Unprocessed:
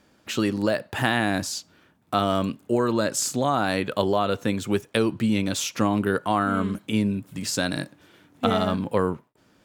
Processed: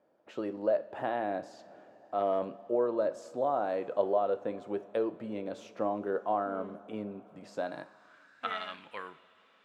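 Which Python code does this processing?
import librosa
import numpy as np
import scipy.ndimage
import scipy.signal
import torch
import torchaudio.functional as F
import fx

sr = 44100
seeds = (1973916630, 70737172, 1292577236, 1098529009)

y = fx.transient(x, sr, attack_db=-4, sustain_db=9, at=(1.57, 2.48), fade=0.02)
y = fx.rev_double_slope(y, sr, seeds[0], early_s=0.35, late_s=4.9, knee_db=-18, drr_db=10.5)
y = fx.filter_sweep_bandpass(y, sr, from_hz=590.0, to_hz=2300.0, start_s=7.51, end_s=8.67, q=2.4)
y = y * librosa.db_to_amplitude(-2.0)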